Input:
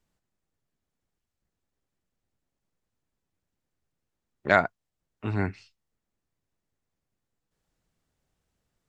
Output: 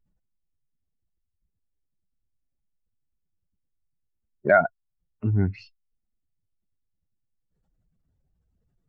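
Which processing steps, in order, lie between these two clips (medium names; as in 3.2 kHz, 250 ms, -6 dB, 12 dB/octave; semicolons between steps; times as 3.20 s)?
spectral contrast enhancement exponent 2.1; in parallel at +1 dB: compression, threshold -28 dBFS, peak gain reduction 12.5 dB; on the sum: trim +1 dB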